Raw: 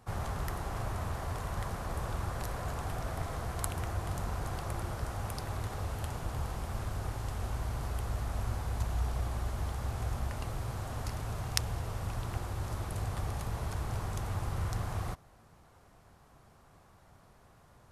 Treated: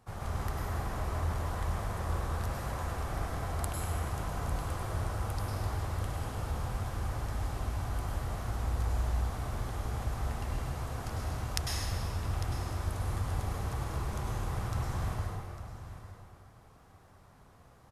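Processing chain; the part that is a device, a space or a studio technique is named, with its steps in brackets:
single-tap delay 851 ms −13.5 dB
stairwell (convolution reverb RT60 2.2 s, pre-delay 94 ms, DRR −4 dB)
level −4.5 dB

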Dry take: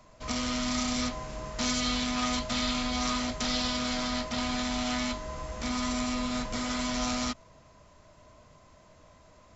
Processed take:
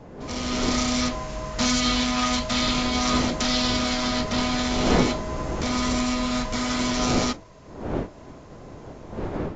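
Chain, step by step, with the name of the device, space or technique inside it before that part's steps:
smartphone video outdoors (wind on the microphone 440 Hz −37 dBFS; automatic gain control gain up to 9 dB; level −2.5 dB; AAC 48 kbit/s 16,000 Hz)

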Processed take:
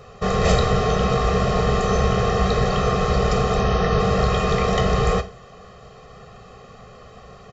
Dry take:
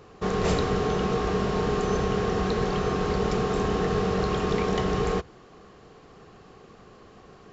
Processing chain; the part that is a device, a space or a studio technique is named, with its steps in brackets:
0:03.54–0:04.00: Butterworth low-pass 6,400 Hz 96 dB per octave
microphone above a desk (comb filter 1.6 ms, depth 88%; convolution reverb RT60 0.30 s, pre-delay 9 ms, DRR 7.5 dB)
level +4 dB

